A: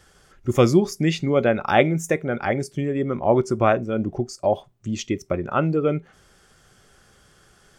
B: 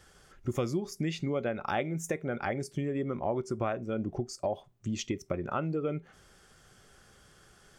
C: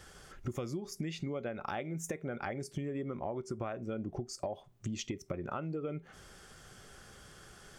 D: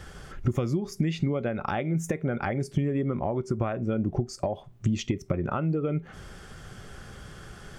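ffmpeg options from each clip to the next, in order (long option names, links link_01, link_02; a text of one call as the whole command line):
ffmpeg -i in.wav -af "acompressor=threshold=-26dB:ratio=4,volume=-3.5dB" out.wav
ffmpeg -i in.wav -af "acompressor=threshold=-41dB:ratio=4,volume=4.5dB" out.wav
ffmpeg -i in.wav -af "bass=frequency=250:gain=6,treble=frequency=4000:gain=-6,volume=8dB" out.wav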